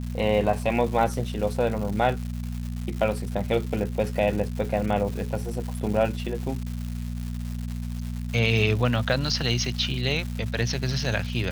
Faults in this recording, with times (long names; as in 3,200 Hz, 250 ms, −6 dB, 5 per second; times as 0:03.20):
surface crackle 390 per second −33 dBFS
mains hum 60 Hz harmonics 4 −31 dBFS